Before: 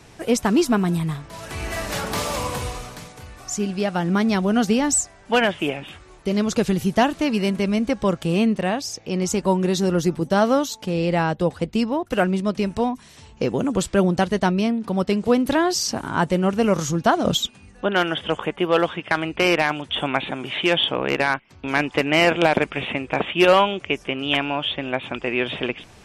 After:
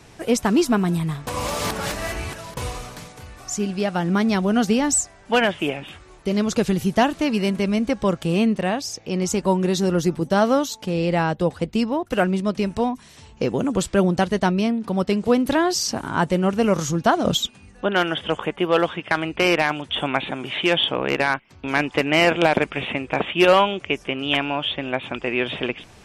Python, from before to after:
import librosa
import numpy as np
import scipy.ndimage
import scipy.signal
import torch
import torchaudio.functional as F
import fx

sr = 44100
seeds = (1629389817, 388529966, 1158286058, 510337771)

y = fx.edit(x, sr, fx.reverse_span(start_s=1.27, length_s=1.3), tone=tone)